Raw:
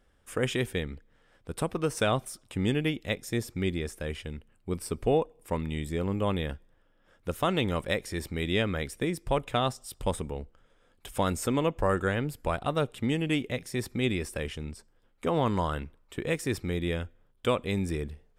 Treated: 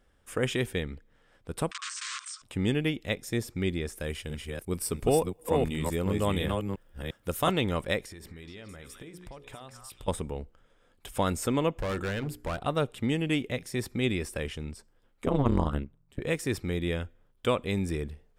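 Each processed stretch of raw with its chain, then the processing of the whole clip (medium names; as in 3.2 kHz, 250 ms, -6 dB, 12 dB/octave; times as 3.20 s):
1.71–2.42 s: integer overflow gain 30.5 dB + brick-wall FIR band-pass 1–9 kHz + level flattener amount 50%
3.95–7.51 s: chunks repeated in reverse 351 ms, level -3 dB + treble shelf 7 kHz +11 dB
8.05–10.08 s: hum notches 60/120/180/240/300/360/420/480/540 Hz + compression 12:1, threshold -41 dBFS + repeats whose band climbs or falls 212 ms, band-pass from 1.3 kHz, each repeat 1.4 oct, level -2.5 dB
11.74–12.60 s: hum notches 60/120/180/240/300/360/420 Hz + hard clipper -28 dBFS
15.26–16.21 s: bass shelf 400 Hz +11 dB + AM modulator 140 Hz, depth 95% + upward expansion, over -41 dBFS
whole clip: none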